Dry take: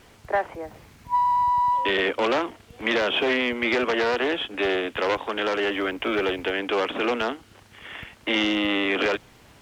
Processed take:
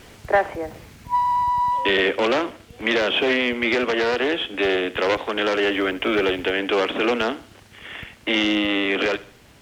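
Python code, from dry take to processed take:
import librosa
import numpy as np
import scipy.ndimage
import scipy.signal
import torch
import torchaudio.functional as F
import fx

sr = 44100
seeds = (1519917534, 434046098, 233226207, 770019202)

p1 = fx.peak_eq(x, sr, hz=990.0, db=-3.5, octaves=1.0)
p2 = fx.rider(p1, sr, range_db=10, speed_s=2.0)
p3 = p2 + fx.echo_feedback(p2, sr, ms=76, feedback_pct=39, wet_db=-18.5, dry=0)
y = p3 * librosa.db_to_amplitude(3.5)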